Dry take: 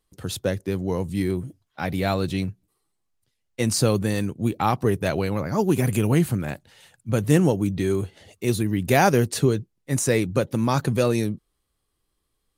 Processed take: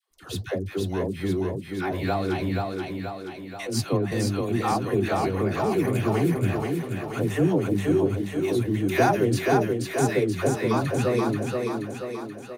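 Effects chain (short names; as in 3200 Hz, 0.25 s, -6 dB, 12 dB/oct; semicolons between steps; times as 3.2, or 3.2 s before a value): bell 9700 Hz -8.5 dB 2 oct; comb 2.8 ms, depth 30%; in parallel at -3 dB: compressor, threshold -28 dBFS, peak gain reduction 14.5 dB; on the sum: vibrato 3 Hz 27 cents; flange 1.8 Hz, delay 2.3 ms, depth 8.2 ms, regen +72%; dispersion lows, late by 0.111 s, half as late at 630 Hz; on a send: thinning echo 0.48 s, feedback 59%, high-pass 150 Hz, level -3 dB; 3.67–4.12 on the sum: three-band expander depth 100%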